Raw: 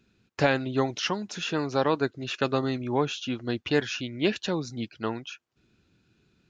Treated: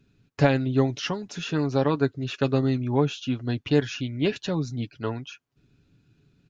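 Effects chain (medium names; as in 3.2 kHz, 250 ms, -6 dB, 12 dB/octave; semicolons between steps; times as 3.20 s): bass shelf 260 Hz +10.5 dB; comb 7.1 ms, depth 47%; trim -3 dB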